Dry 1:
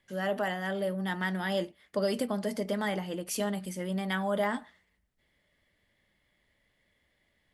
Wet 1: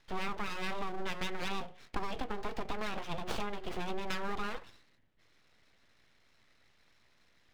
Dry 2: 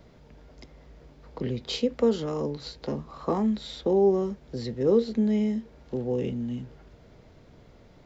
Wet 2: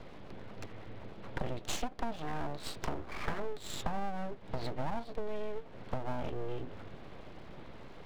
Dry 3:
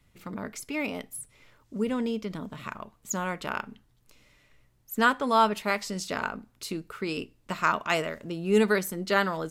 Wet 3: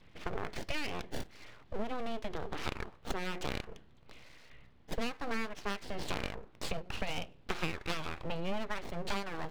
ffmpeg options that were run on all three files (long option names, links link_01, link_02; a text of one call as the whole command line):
ffmpeg -i in.wav -filter_complex "[0:a]bandreject=frequency=181.5:width_type=h:width=4,bandreject=frequency=363:width_type=h:width=4,bandreject=frequency=544.5:width_type=h:width=4,acrossover=split=550|4700[link_01][link_02][link_03];[link_03]acrusher=samples=29:mix=1:aa=0.000001:lfo=1:lforange=17.4:lforate=0.23[link_04];[link_01][link_02][link_04]amix=inputs=3:normalize=0,acompressor=threshold=-37dB:ratio=12,highshelf=frequency=4700:width_type=q:width=1.5:gain=-7,aeval=exprs='abs(val(0))':channel_layout=same,volume=6.5dB" out.wav